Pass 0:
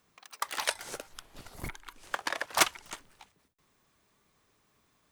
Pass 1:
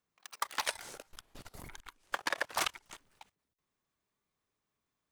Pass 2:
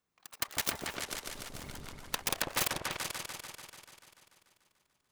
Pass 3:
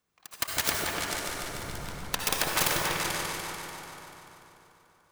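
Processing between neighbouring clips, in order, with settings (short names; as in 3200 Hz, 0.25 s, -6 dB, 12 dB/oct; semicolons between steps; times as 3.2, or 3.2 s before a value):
level quantiser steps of 17 dB; sample leveller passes 1
self-modulated delay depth 0.94 ms; repeats that get brighter 0.146 s, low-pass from 750 Hz, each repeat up 2 oct, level 0 dB; gain +1.5 dB
reverb RT60 3.2 s, pre-delay 52 ms, DRR -1 dB; gain +4 dB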